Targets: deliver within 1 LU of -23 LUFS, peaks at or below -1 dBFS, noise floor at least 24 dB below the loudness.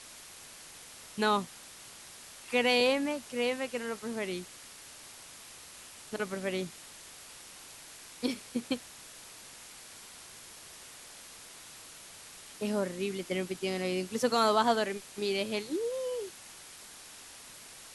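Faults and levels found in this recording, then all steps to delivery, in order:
noise floor -50 dBFS; noise floor target -56 dBFS; loudness -32.0 LUFS; peak level -13.5 dBFS; loudness target -23.0 LUFS
-> noise print and reduce 6 dB; trim +9 dB

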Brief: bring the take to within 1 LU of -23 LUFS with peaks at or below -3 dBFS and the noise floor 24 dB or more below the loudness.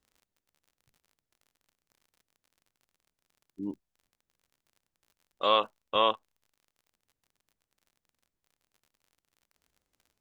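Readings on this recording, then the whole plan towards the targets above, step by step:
tick rate 46 per s; loudness -27.5 LUFS; peak level -11.0 dBFS; loudness target -23.0 LUFS
-> de-click; trim +4.5 dB

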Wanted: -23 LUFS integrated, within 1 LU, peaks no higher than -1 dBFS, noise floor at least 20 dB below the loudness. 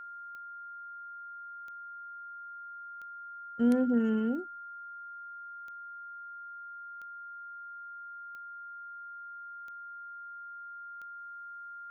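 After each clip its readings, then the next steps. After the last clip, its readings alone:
clicks found 9; steady tone 1.4 kHz; tone level -42 dBFS; loudness -38.0 LUFS; peak level -16.5 dBFS; loudness target -23.0 LUFS
-> de-click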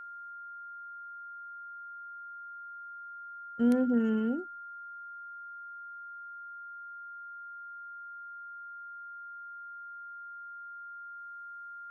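clicks found 0; steady tone 1.4 kHz; tone level -42 dBFS
-> band-stop 1.4 kHz, Q 30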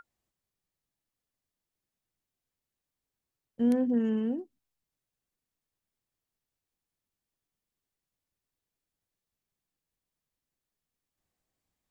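steady tone not found; loudness -29.0 LUFS; peak level -17.0 dBFS; loudness target -23.0 LUFS
-> trim +6 dB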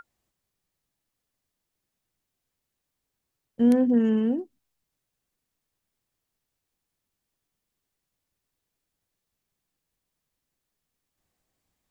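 loudness -23.0 LUFS; peak level -11.0 dBFS; noise floor -84 dBFS

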